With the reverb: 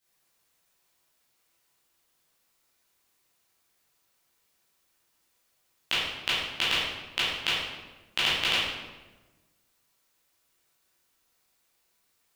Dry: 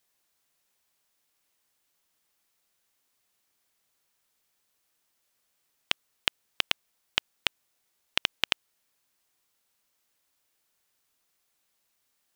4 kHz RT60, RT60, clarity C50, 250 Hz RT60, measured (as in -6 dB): 0.85 s, 1.2 s, -1.5 dB, 1.5 s